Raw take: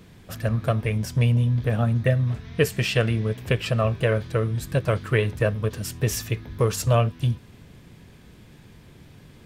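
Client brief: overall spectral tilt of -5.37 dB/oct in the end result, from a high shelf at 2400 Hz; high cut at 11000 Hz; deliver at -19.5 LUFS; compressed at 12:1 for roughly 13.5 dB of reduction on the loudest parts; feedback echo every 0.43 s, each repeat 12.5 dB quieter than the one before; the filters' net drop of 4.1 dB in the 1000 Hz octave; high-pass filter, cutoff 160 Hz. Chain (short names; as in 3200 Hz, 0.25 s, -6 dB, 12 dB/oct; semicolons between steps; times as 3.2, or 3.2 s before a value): HPF 160 Hz; LPF 11000 Hz; bell 1000 Hz -5.5 dB; high shelf 2400 Hz -3 dB; compressor 12:1, threshold -31 dBFS; feedback echo 0.43 s, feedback 24%, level -12.5 dB; gain +17 dB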